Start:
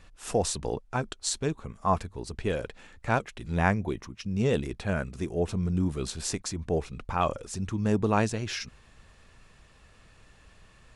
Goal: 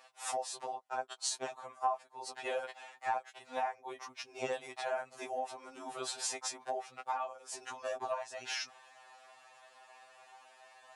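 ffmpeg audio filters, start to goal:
ffmpeg -i in.wav -af "highpass=frequency=750:width_type=q:width=4.9,acompressor=threshold=-31dB:ratio=8,afftfilt=real='re*2.45*eq(mod(b,6),0)':imag='im*2.45*eq(mod(b,6),0)':win_size=2048:overlap=0.75,volume=1dB" out.wav

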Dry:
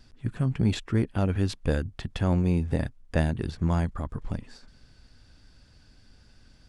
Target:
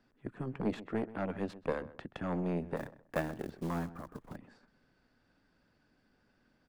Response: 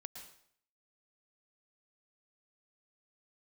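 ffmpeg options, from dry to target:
-filter_complex "[0:a]aeval=exprs='0.376*(cos(1*acos(clip(val(0)/0.376,-1,1)))-cos(1*PI/2))+0.0841*(cos(6*acos(clip(val(0)/0.376,-1,1)))-cos(6*PI/2))':channel_layout=same,acrossover=split=170 2300:gain=0.112 1 0.178[link_01][link_02][link_03];[link_01][link_02][link_03]amix=inputs=3:normalize=0,asettb=1/sr,asplit=3[link_04][link_05][link_06];[link_04]atrim=end=2.764[link_07];[link_05]atrim=start=2.76:end=4.36,asetpts=PTS-STARTPTS,afade=type=in:duration=0.004:curve=qsin,afade=type=out:start_time=1.596:duration=0.004:curve=qsin,acrusher=bits=5:mode=log:mix=0:aa=0.000001[link_08];[link_06]atrim=start=4.356[link_09];[link_07][link_08]acrossfade=duration=0.004:curve1=hsin:curve2=qsin[link_10];[link_10][link_09]acrossfade=duration=0.004:curve1=qsin:curve2=hsin,asplit=2[link_11][link_12];[link_12]adelay=129,lowpass=frequency=1700:poles=1,volume=-16dB,asplit=2[link_13][link_14];[link_14]adelay=129,lowpass=frequency=1700:poles=1,volume=0.24[link_15];[link_13][link_15]amix=inputs=2:normalize=0[link_16];[link_11][link_16]amix=inputs=2:normalize=0,volume=-6.5dB"

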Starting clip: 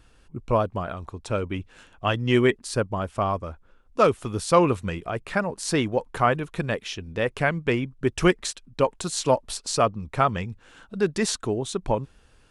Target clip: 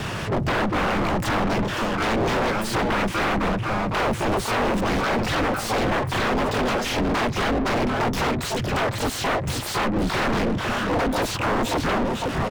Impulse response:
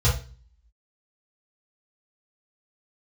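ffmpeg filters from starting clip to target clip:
-filter_complex "[0:a]asplit=2[link_01][link_02];[link_02]asoftclip=type=hard:threshold=-15dB,volume=-9dB[link_03];[link_01][link_03]amix=inputs=2:normalize=0,alimiter=limit=-13.5dB:level=0:latency=1:release=16,adynamicequalizer=threshold=0.0112:dfrequency=690:dqfactor=3.4:tfrequency=690:tqfactor=3.4:attack=5:release=100:ratio=0.375:range=1.5:mode=boostabove:tftype=bell,asplit=3[link_04][link_05][link_06];[link_05]asetrate=33038,aresample=44100,atempo=1.33484,volume=-6dB[link_07];[link_06]asetrate=88200,aresample=44100,atempo=0.5,volume=-3dB[link_08];[link_04][link_07][link_08]amix=inputs=3:normalize=0,acrossover=split=130[link_09][link_10];[link_10]acompressor=threshold=-29dB:ratio=6[link_11];[link_09][link_11]amix=inputs=2:normalize=0,asplit=2[link_12][link_13];[link_13]adelay=507.3,volume=-12dB,highshelf=frequency=4000:gain=-11.4[link_14];[link_12][link_14]amix=inputs=2:normalize=0,aeval=exprs='0.211*sin(PI/2*6.31*val(0)/0.211)':channel_layout=same,aeval=exprs='val(0)*sin(2*PI*110*n/s)':channel_layout=same,asplit=2[link_15][link_16];[link_16]highpass=frequency=720:poles=1,volume=28dB,asoftclip=type=tanh:threshold=-18.5dB[link_17];[link_15][link_17]amix=inputs=2:normalize=0,lowpass=frequency=1800:poles=1,volume=-6dB"

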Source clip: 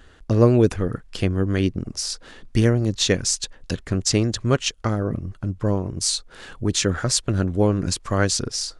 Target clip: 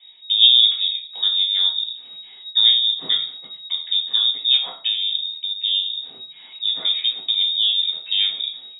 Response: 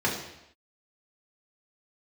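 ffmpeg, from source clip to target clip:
-filter_complex "[0:a]lowpass=frequency=3200:width_type=q:width=0.5098,lowpass=frequency=3200:width_type=q:width=0.6013,lowpass=frequency=3200:width_type=q:width=0.9,lowpass=frequency=3200:width_type=q:width=2.563,afreqshift=-3800[link_01];[1:a]atrim=start_sample=2205,asetrate=83790,aresample=44100[link_02];[link_01][link_02]afir=irnorm=-1:irlink=0,acrossover=split=150|2600[link_03][link_04][link_05];[link_05]crystalizer=i=8:c=0[link_06];[link_03][link_04][link_06]amix=inputs=3:normalize=0,volume=-16.5dB"

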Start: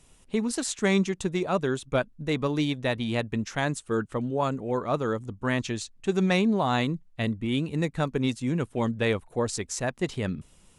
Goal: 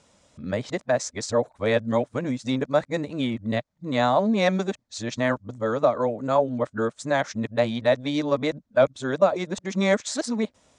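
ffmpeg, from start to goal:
ffmpeg -i in.wav -af "areverse,highpass=110,equalizer=frequency=160:width_type=q:width=4:gain=-10,equalizer=frequency=380:width_type=q:width=4:gain=-7,equalizer=frequency=600:width_type=q:width=4:gain=9,equalizer=frequency=2800:width_type=q:width=4:gain=-8,lowpass=frequency=7100:width=0.5412,lowpass=frequency=7100:width=1.3066,volume=3dB" out.wav

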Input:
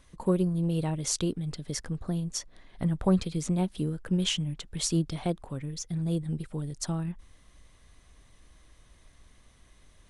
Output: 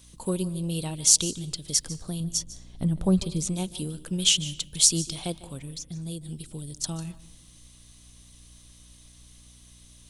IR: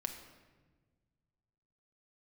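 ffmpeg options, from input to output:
-filter_complex "[0:a]aeval=exprs='val(0)+0.00282*(sin(2*PI*60*n/s)+sin(2*PI*2*60*n/s)/2+sin(2*PI*3*60*n/s)/3+sin(2*PI*4*60*n/s)/4+sin(2*PI*5*60*n/s)/5)':channel_layout=same,asettb=1/sr,asplit=3[link_01][link_02][link_03];[link_01]atrim=end=2.204[link_04];[link_02]atrim=start=2.2:end=3.47,asetpts=PTS-STARTPTS,afade=type=in:duration=0.004:curve=qsin,afade=type=out:start_time=1.266:duration=0.004:curve=qsin,tiltshelf=frequency=730:gain=6[link_05];[link_03]atrim=start=3.466[link_06];[link_04][link_05]acrossfade=duration=0.004:curve1=hsin:curve2=qsin[link_07];[link_07][link_06]acrossfade=duration=0.004:curve1=qsin:curve2=hsin,asettb=1/sr,asplit=3[link_08][link_09][link_10];[link_08]atrim=end=5.634[link_11];[link_09]atrim=start=5.63:end=6.84,asetpts=PTS-STARTPTS,afade=type=in:duration=0.004:curve=qsin,afade=type=out:start_time=1.206:duration=0.004:curve=qsin,acrossover=split=710|2800[link_12][link_13][link_14];[link_12]acompressor=threshold=-30dB:ratio=4[link_15];[link_13]acompressor=threshold=-59dB:ratio=4[link_16];[link_14]acompressor=threshold=-53dB:ratio=4[link_17];[link_15][link_16][link_17]amix=inputs=3:normalize=0[link_18];[link_10]atrim=start=6.836[link_19];[link_11][link_18]acrossfade=duration=0.004:curve1=hsin:curve2=qsin[link_20];[link_20][link_19]acrossfade=duration=0.004:curve1=qsin:curve2=hsin,aexciter=amount=5:drive=4.7:freq=2700,asplit=2[link_21][link_22];[1:a]atrim=start_sample=2205,asetrate=74970,aresample=44100,adelay=149[link_23];[link_22][link_23]afir=irnorm=-1:irlink=0,volume=-11dB[link_24];[link_21][link_24]amix=inputs=2:normalize=0,volume=-3dB"

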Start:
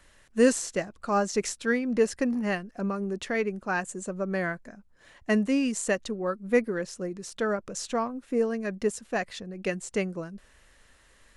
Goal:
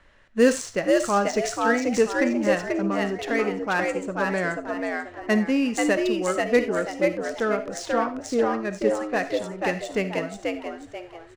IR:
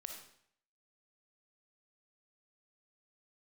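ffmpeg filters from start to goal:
-filter_complex "[0:a]adynamicsmooth=sensitivity=6.5:basefreq=3200,asplit=5[link_01][link_02][link_03][link_04][link_05];[link_02]adelay=487,afreqshift=85,volume=-3dB[link_06];[link_03]adelay=974,afreqshift=170,volume=-12.6dB[link_07];[link_04]adelay=1461,afreqshift=255,volume=-22.3dB[link_08];[link_05]adelay=1948,afreqshift=340,volume=-31.9dB[link_09];[link_01][link_06][link_07][link_08][link_09]amix=inputs=5:normalize=0,asplit=2[link_10][link_11];[1:a]atrim=start_sample=2205,atrim=end_sample=4410,lowshelf=frequency=340:gain=-7.5[link_12];[link_11][link_12]afir=irnorm=-1:irlink=0,volume=4.5dB[link_13];[link_10][link_13]amix=inputs=2:normalize=0,volume=-1.5dB"

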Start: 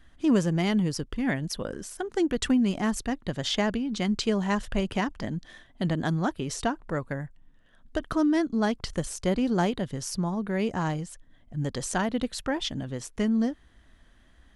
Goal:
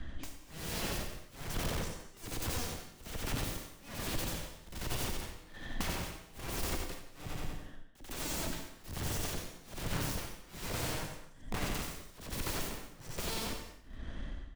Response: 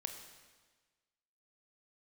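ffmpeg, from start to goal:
-filter_complex "[0:a]lowpass=6000,aeval=exprs='(mod(70.8*val(0)+1,2)-1)/70.8':channel_layout=same,lowshelf=frequency=490:gain=9,aecho=1:1:90|180|270|360|450:0.631|0.265|0.111|0.0467|0.0196,aeval=exprs='(tanh(31.6*val(0)+0.45)-tanh(0.45))/31.6':channel_layout=same,acrossover=split=150|780[link_01][link_02][link_03];[link_01]acompressor=threshold=-44dB:ratio=4[link_04];[link_02]acompressor=threshold=-52dB:ratio=4[link_05];[link_03]acompressor=threshold=-49dB:ratio=4[link_06];[link_04][link_05][link_06]amix=inputs=3:normalize=0,tremolo=f=1.2:d=0.99[link_07];[1:a]atrim=start_sample=2205,afade=type=out:start_time=0.32:duration=0.01,atrim=end_sample=14553[link_08];[link_07][link_08]afir=irnorm=-1:irlink=0,volume=13.5dB"

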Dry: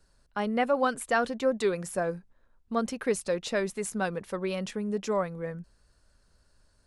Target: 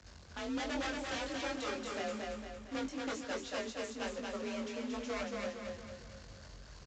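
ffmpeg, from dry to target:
ffmpeg -i in.wav -filter_complex "[0:a]aeval=exprs='val(0)+0.5*0.0112*sgn(val(0))':channel_layout=same,bandreject=frequency=50:width_type=h:width=6,bandreject=frequency=100:width_type=h:width=6,bandreject=frequency=150:width_type=h:width=6,bandreject=frequency=200:width_type=h:width=6,bandreject=frequency=250:width_type=h:width=6,bandreject=frequency=300:width_type=h:width=6,bandreject=frequency=350:width_type=h:width=6,asettb=1/sr,asplit=3[link_01][link_02][link_03];[link_01]atrim=end=2.844[link_04];[link_02]atrim=start=2.84:end=5.26,asetpts=PTS-STARTPTS,afade=type=in:duration=0.004:curve=qsin,afade=type=out:start_time=2.416:duration=0.004:curve=qsin,agate=range=-33dB:threshold=-30dB:ratio=3:detection=peak[link_05];[link_03]atrim=start=5.256[link_06];[link_04][link_05]acrossfade=duration=0.004:curve1=hsin:curve2=qsin[link_07];[link_07][link_06]acrossfade=duration=0.004:curve1=qsin:curve2=hsin,acrusher=bits=2:mode=log:mix=0:aa=0.000001,aeval=exprs='0.0596*(abs(mod(val(0)/0.0596+3,4)-2)-1)':channel_layout=same,flanger=delay=20:depth=2.5:speed=1.2,afreqshift=42,aecho=1:1:229|458|687|916|1145|1374:0.708|0.333|0.156|0.0735|0.0345|0.0162,volume=-7dB" -ar 16000 -c:a pcm_mulaw out.wav

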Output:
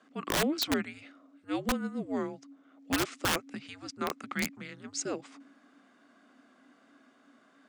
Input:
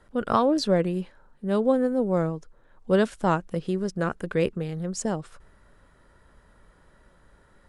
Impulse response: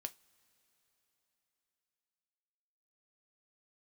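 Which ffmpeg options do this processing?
-af "afreqshift=-290,highpass=frequency=260:width=0.5412,highpass=frequency=260:width=1.3066,equalizer=frequency=260:width_type=q:width=4:gain=-4,equalizer=frequency=940:width_type=q:width=4:gain=-9,equalizer=frequency=2100:width_type=q:width=4:gain=6,lowpass=frequency=7500:width=0.5412,lowpass=frequency=7500:width=1.3066,aeval=exprs='(mod(11.2*val(0)+1,2)-1)/11.2':channel_layout=same"

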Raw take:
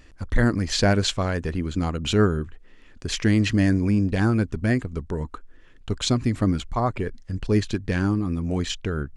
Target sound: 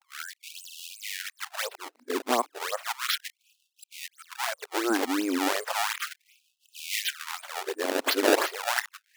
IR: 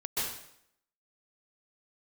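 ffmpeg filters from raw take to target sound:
-af "areverse,acrusher=samples=24:mix=1:aa=0.000001:lfo=1:lforange=38.4:lforate=2.8,afftfilt=real='re*gte(b*sr/1024,220*pow(2600/220,0.5+0.5*sin(2*PI*0.34*pts/sr)))':imag='im*gte(b*sr/1024,220*pow(2600/220,0.5+0.5*sin(2*PI*0.34*pts/sr)))':win_size=1024:overlap=0.75"

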